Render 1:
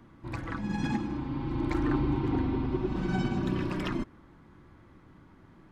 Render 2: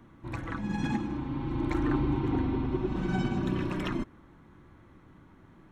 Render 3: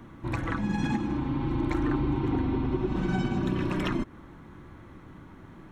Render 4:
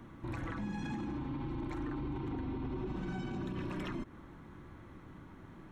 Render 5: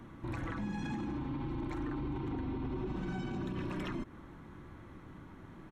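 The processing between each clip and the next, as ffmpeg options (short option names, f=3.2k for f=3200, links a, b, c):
-af "bandreject=f=4.8k:w=6"
-af "acompressor=threshold=-34dB:ratio=2.5,volume=7.5dB"
-af "alimiter=level_in=3dB:limit=-24dB:level=0:latency=1:release=42,volume=-3dB,volume=-4.5dB"
-af "aresample=32000,aresample=44100,volume=1dB"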